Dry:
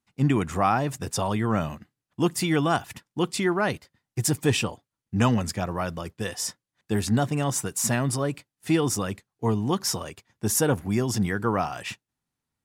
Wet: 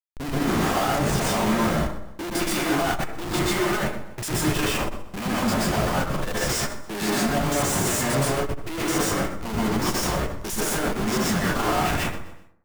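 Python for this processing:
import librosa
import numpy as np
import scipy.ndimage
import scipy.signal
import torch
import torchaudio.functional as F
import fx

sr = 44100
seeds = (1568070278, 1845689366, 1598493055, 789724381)

p1 = fx.spec_steps(x, sr, hold_ms=50)
p2 = scipy.signal.sosfilt(scipy.signal.butter(2, 270.0, 'highpass', fs=sr, output='sos'), p1)
p3 = fx.tilt_shelf(p2, sr, db=-4.0, hz=720.0)
p4 = fx.notch(p3, sr, hz=460.0, q=12.0)
p5 = fx.schmitt(p4, sr, flips_db=-36.0)
p6 = fx.power_curve(p5, sr, exponent=0.35)
p7 = p6 + fx.echo_feedback(p6, sr, ms=124, feedback_pct=33, wet_db=-14.5, dry=0)
p8 = fx.rev_plate(p7, sr, seeds[0], rt60_s=0.62, hf_ratio=0.45, predelay_ms=110, drr_db=-6.5)
p9 = fx.transformer_sat(p8, sr, knee_hz=68.0)
y = F.gain(torch.from_numpy(p9), -3.5).numpy()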